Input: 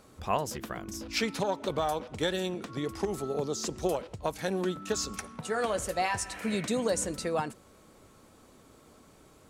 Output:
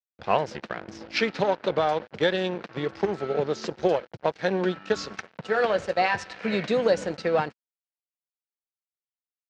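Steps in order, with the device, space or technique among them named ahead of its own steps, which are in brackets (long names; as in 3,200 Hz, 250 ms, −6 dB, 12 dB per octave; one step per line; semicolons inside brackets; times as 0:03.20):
blown loudspeaker (dead-zone distortion −42.5 dBFS; loudspeaker in its box 130–4,500 Hz, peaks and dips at 260 Hz −7 dB, 510 Hz +3 dB, 1,100 Hz −4 dB, 1,600 Hz +3 dB, 3,500 Hz −3 dB)
level +7.5 dB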